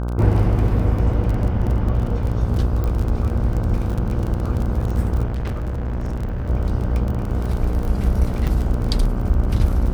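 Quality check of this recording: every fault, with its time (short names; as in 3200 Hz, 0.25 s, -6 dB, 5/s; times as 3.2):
buzz 60 Hz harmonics 26 -23 dBFS
crackle 26/s -24 dBFS
2.84 pop -14 dBFS
5.26–6.5 clipped -21 dBFS
8.47–8.48 gap 6.1 ms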